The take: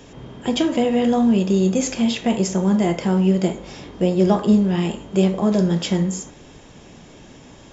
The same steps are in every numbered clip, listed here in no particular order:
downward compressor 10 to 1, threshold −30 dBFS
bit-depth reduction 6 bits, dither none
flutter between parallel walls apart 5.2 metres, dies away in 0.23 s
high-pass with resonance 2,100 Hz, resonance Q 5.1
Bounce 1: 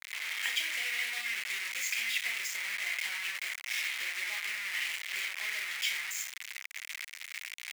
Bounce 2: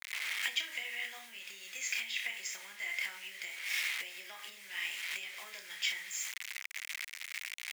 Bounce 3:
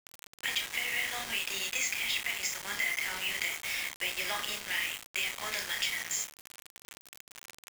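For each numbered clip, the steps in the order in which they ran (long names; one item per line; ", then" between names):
downward compressor, then flutter between parallel walls, then bit-depth reduction, then high-pass with resonance
flutter between parallel walls, then bit-depth reduction, then downward compressor, then high-pass with resonance
high-pass with resonance, then downward compressor, then flutter between parallel walls, then bit-depth reduction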